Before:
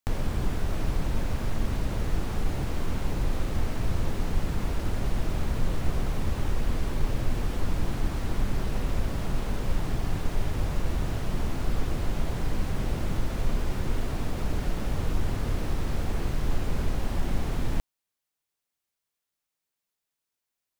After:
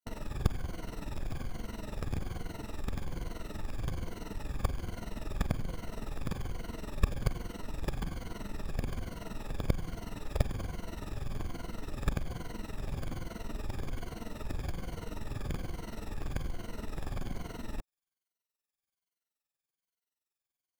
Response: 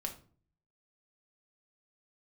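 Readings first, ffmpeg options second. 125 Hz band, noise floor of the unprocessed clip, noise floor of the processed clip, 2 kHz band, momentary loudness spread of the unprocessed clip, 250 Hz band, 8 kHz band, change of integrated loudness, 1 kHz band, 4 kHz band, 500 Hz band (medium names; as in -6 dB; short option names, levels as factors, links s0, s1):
-8.0 dB, under -85 dBFS, under -85 dBFS, -7.0 dB, 1 LU, -7.5 dB, -7.5 dB, -8.0 dB, -7.5 dB, -7.5 dB, -7.5 dB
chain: -af "afftfilt=real='re*pow(10,13/40*sin(2*PI*(1.9*log(max(b,1)*sr/1024/100)/log(2)-(-1.2)*(pts-256)/sr)))':imag='im*pow(10,13/40*sin(2*PI*(1.9*log(max(b,1)*sr/1024/100)/log(2)-(-1.2)*(pts-256)/sr)))':win_size=1024:overlap=0.75,tremolo=f=21:d=0.788,aeval=exprs='0.398*(cos(1*acos(clip(val(0)/0.398,-1,1)))-cos(1*PI/2))+0.178*(cos(3*acos(clip(val(0)/0.398,-1,1)))-cos(3*PI/2))':c=same,volume=1.5"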